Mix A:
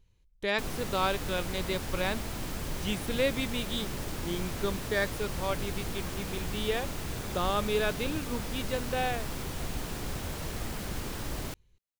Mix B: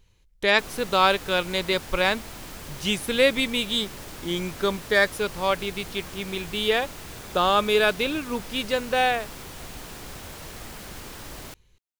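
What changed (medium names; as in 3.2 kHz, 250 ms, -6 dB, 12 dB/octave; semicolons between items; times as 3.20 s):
speech +11.0 dB; master: add bass shelf 410 Hz -7 dB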